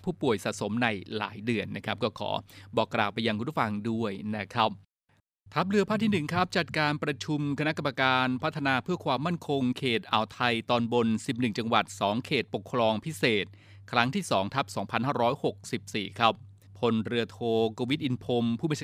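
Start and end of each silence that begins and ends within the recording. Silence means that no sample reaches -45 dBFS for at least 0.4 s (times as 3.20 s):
4.77–5.52 s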